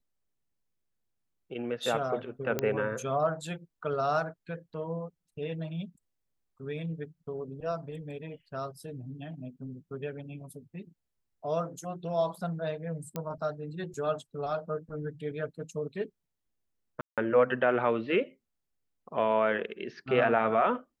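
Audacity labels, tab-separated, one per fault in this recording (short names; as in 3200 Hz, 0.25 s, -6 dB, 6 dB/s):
2.590000	2.590000	pop -14 dBFS
13.160000	13.160000	pop -20 dBFS
17.010000	17.180000	gap 0.167 s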